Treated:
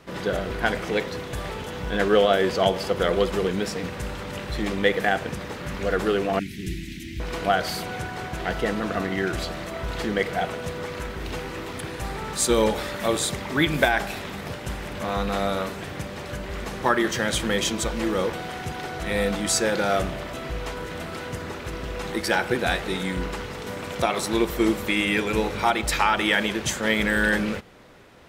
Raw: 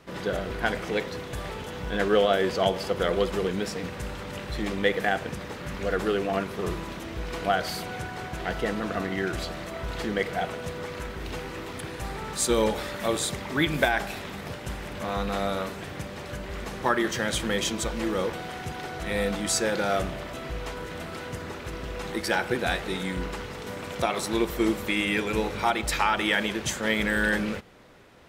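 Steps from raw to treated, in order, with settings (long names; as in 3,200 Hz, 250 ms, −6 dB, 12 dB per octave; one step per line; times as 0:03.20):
0:06.39–0:07.20: elliptic band-stop filter 310–2,000 Hz, stop band 40 dB
level +3 dB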